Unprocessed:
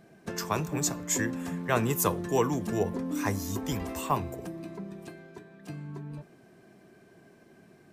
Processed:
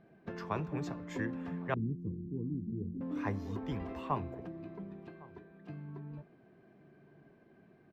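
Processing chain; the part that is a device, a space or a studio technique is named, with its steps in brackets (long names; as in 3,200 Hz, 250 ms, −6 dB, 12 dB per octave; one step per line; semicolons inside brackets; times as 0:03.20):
shout across a valley (high-frequency loss of the air 340 metres; slap from a distant wall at 190 metres, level −21 dB)
0:01.74–0:03.01: inverse Chebyshev low-pass filter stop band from 600 Hz, stop band 40 dB
level −5 dB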